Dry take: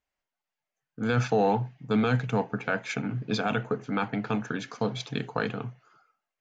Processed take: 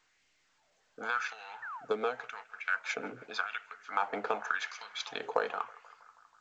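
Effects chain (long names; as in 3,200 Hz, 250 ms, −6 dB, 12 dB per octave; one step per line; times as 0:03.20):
dynamic equaliser 1,100 Hz, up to +6 dB, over −42 dBFS, Q 1.1
downward compressor 8 to 1, threshold −29 dBFS, peak gain reduction 12 dB
auto-filter high-pass sine 0.89 Hz 460–2,300 Hz
0:01.62–0:01.85: sound drawn into the spectrogram fall 650–1,900 Hz −41 dBFS
0:01.77–0:03.93: rotating-speaker cabinet horn 6 Hz
feedback echo with a band-pass in the loop 161 ms, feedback 75%, band-pass 1,200 Hz, level −20 dB
A-law companding 128 kbit/s 16,000 Hz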